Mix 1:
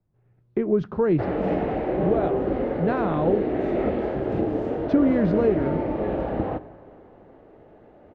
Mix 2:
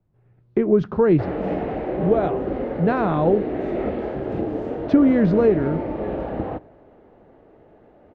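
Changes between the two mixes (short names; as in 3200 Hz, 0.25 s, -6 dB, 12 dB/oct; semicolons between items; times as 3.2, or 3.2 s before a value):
speech +4.5 dB; background: send -9.0 dB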